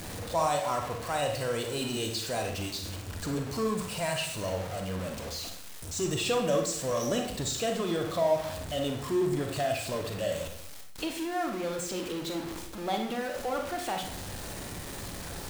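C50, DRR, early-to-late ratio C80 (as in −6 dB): 5.5 dB, 3.0 dB, 10.0 dB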